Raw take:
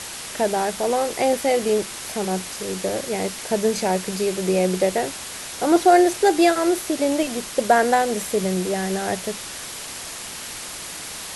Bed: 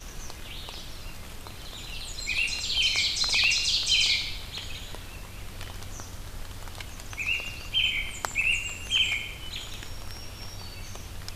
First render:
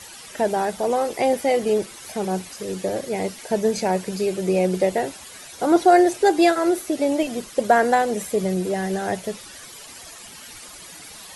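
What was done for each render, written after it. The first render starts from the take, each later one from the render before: denoiser 12 dB, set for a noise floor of -34 dBFS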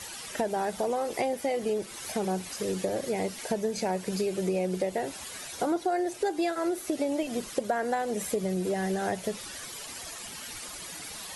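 compressor 6:1, threshold -26 dBFS, peak gain reduction 15.5 dB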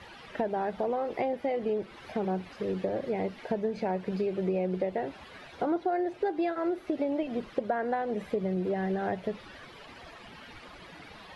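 air absorption 360 m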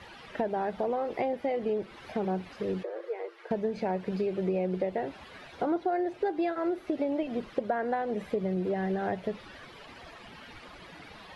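2.83–3.51 rippled Chebyshev high-pass 330 Hz, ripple 9 dB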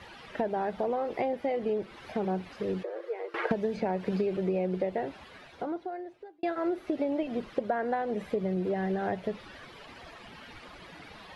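3.34–4.37 three-band squash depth 100%; 5.03–6.43 fade out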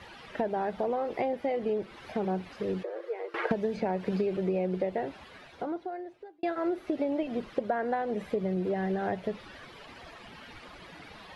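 nothing audible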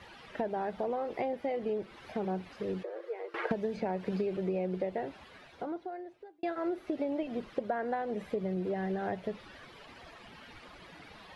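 gain -3.5 dB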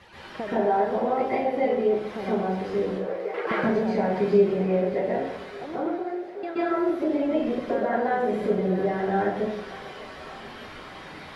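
thinning echo 0.59 s, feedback 82%, high-pass 420 Hz, level -17 dB; plate-style reverb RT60 0.79 s, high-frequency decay 0.7×, pre-delay 0.115 s, DRR -9.5 dB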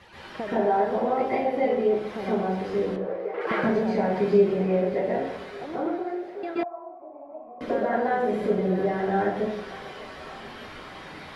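2.96–3.41 LPF 1500 Hz 6 dB/oct; 6.63–7.61 vocal tract filter a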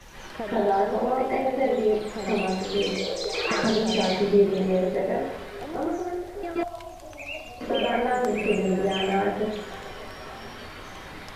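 add bed -8.5 dB

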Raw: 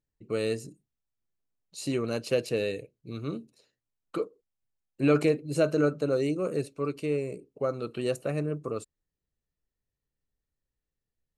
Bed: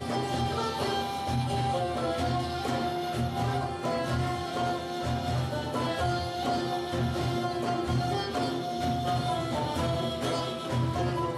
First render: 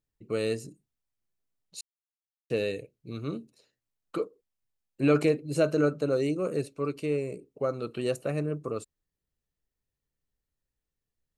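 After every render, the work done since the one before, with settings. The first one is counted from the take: 1.81–2.5 mute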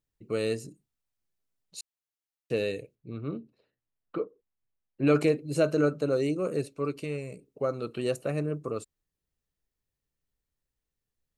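2.95–5.07 air absorption 410 m; 7.04–7.48 bell 360 Hz -11 dB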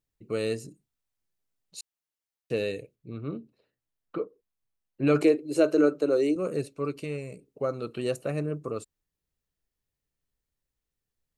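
5.21–6.36 resonant low shelf 250 Hz -8 dB, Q 3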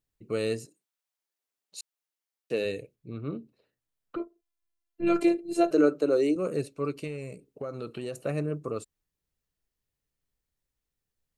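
0.64–2.64 HPF 690 Hz -> 200 Hz; 4.16–5.71 robotiser 342 Hz; 7.07–8.21 compressor, threshold -31 dBFS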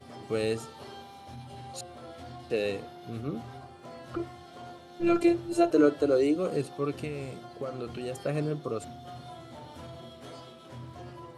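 add bed -15.5 dB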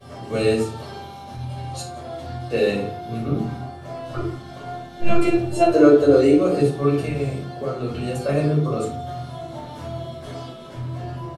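echo 0.171 s -22.5 dB; shoebox room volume 340 m³, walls furnished, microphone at 5.5 m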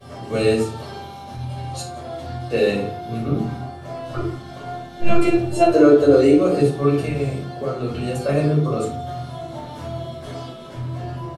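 gain +1.5 dB; limiter -3 dBFS, peak gain reduction 2.5 dB

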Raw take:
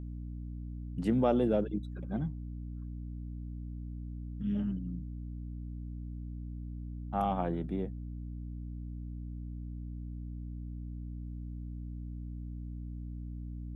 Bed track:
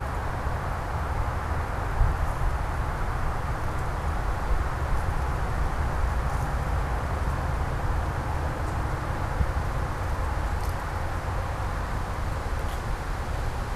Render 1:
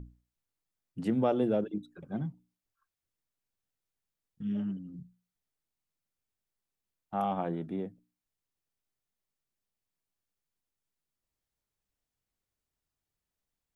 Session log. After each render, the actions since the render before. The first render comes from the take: notches 60/120/180/240/300 Hz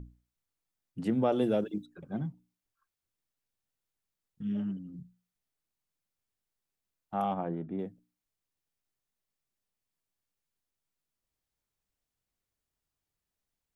1.32–1.83 high shelf 2800 Hz +10.5 dB; 7.34–7.79 air absorption 490 m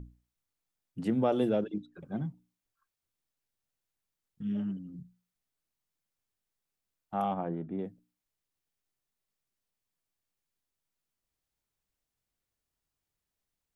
1.49–1.94 air absorption 98 m; 7.28–7.84 air absorption 64 m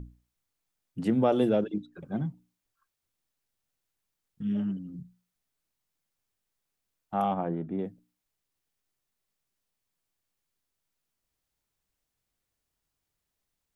gain +3.5 dB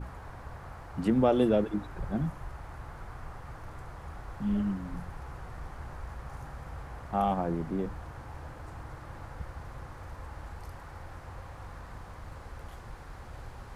add bed track -15 dB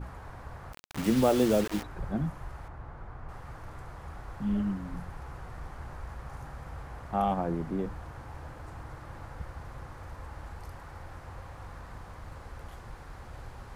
0.73–1.83 requantised 6-bit, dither none; 2.68–3.29 LPF 1400 Hz 6 dB/oct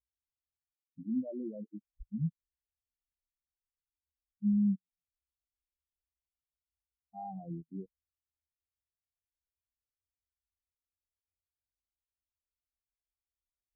level quantiser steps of 17 dB; spectral expander 4:1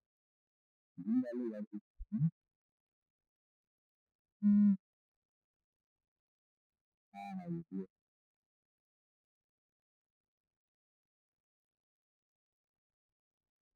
median filter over 41 samples

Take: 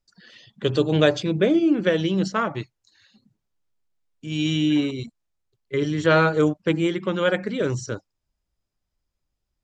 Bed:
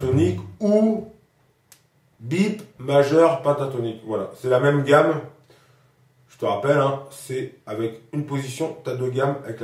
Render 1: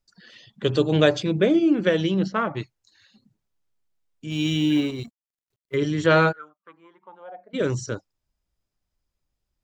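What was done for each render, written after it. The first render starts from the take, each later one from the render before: 2.14–2.57 air absorption 160 m; 4.3–5.75 G.711 law mismatch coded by A; 6.31–7.53 band-pass 1500 Hz -> 640 Hz, Q 15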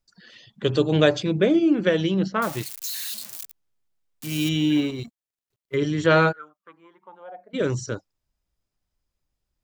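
2.42–4.49 switching spikes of -23 dBFS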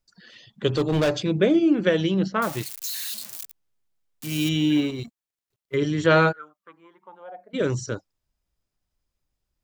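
0.68–1.14 hard clip -17 dBFS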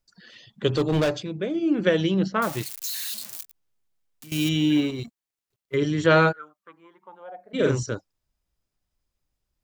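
1–1.83 dip -9 dB, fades 0.29 s; 3.42–4.32 compressor 5:1, threshold -43 dBFS; 7.41–7.83 doubler 45 ms -2 dB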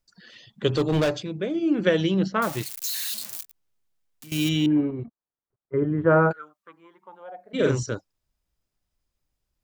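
2.77–3.4 switching spikes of -36.5 dBFS; 4.66–6.31 LPF 1400 Hz 24 dB/oct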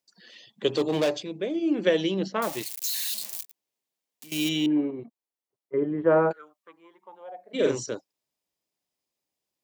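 HPF 280 Hz 12 dB/oct; bell 1400 Hz -8.5 dB 0.52 oct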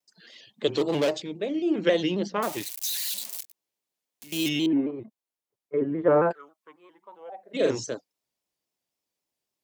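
shaped vibrato square 3.7 Hz, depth 100 cents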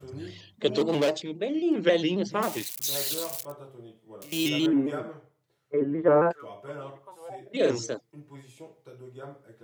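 add bed -21 dB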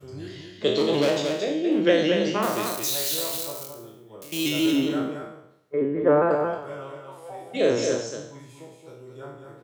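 spectral trails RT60 0.72 s; on a send: echo 0.225 s -5.5 dB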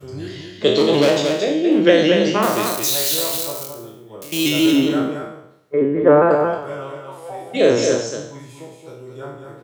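gain +7 dB; limiter -1 dBFS, peak gain reduction 1.5 dB

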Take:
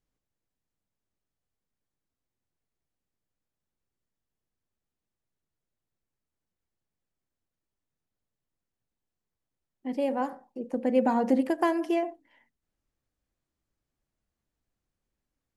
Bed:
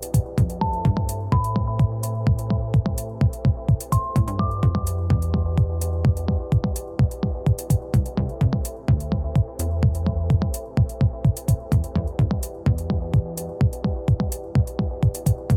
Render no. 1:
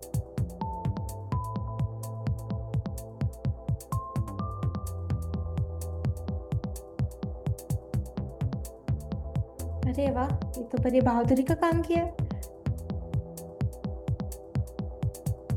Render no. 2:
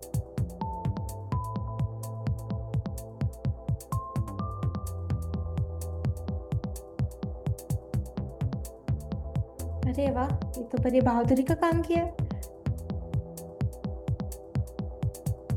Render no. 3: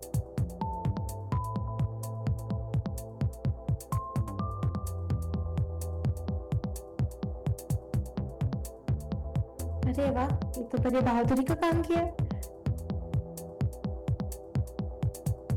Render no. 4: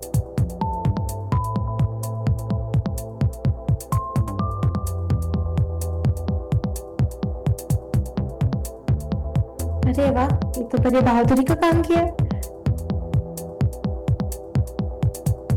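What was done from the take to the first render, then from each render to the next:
add bed -11 dB
nothing audible
overloaded stage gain 22.5 dB
gain +9.5 dB

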